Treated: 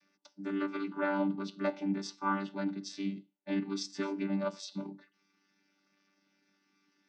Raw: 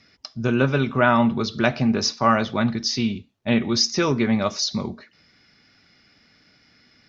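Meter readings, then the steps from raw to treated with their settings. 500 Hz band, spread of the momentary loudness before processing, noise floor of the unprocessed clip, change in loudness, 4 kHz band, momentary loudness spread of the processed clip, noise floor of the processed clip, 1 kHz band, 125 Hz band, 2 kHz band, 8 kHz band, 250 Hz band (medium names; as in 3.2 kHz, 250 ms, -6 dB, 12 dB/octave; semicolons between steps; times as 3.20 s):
-13.5 dB, 8 LU, -59 dBFS, -14.0 dB, -20.5 dB, 9 LU, -76 dBFS, -14.5 dB, -18.5 dB, -15.5 dB, no reading, -12.0 dB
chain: vocoder on a held chord bare fifth, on G3; bass shelf 420 Hz -10.5 dB; trim -6.5 dB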